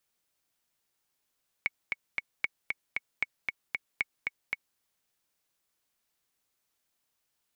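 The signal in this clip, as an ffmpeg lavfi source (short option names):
-f lavfi -i "aevalsrc='pow(10,(-14-3*gte(mod(t,3*60/230),60/230))/20)*sin(2*PI*2220*mod(t,60/230))*exp(-6.91*mod(t,60/230)/0.03)':d=3.13:s=44100"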